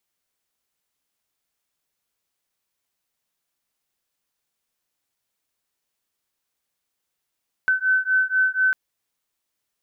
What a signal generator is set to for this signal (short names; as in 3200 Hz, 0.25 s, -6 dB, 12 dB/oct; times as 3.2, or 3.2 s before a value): beating tones 1520 Hz, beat 4.1 Hz, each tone -20.5 dBFS 1.05 s